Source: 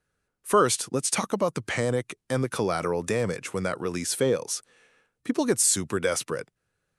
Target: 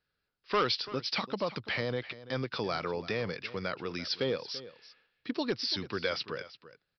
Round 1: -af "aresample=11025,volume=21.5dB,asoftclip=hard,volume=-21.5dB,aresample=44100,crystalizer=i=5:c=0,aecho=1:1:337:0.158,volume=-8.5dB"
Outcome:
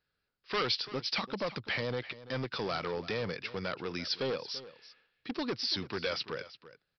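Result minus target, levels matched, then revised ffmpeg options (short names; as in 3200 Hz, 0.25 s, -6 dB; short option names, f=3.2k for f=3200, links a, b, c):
overloaded stage: distortion +10 dB
-af "aresample=11025,volume=14.5dB,asoftclip=hard,volume=-14.5dB,aresample=44100,crystalizer=i=5:c=0,aecho=1:1:337:0.158,volume=-8.5dB"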